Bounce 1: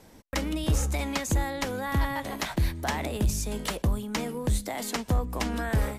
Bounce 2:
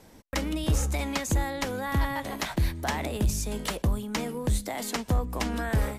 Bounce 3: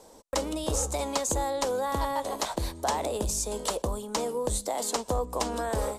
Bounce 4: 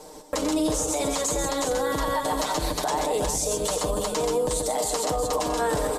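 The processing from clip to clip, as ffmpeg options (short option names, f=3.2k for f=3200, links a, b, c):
-af anull
-af "equalizer=f=125:t=o:w=1:g=-7,equalizer=f=500:t=o:w=1:g=11,equalizer=f=1k:t=o:w=1:g=9,equalizer=f=2k:t=o:w=1:g=-6,equalizer=f=4k:t=o:w=1:g=5,equalizer=f=8k:t=o:w=1:g=12,volume=-6dB"
-filter_complex "[0:a]aecho=1:1:6.6:0.82,asplit=2[a][b];[b]aecho=0:1:90|128|138|361:0.168|0.355|0.316|0.376[c];[a][c]amix=inputs=2:normalize=0,alimiter=limit=-23dB:level=0:latency=1:release=76,volume=6.5dB"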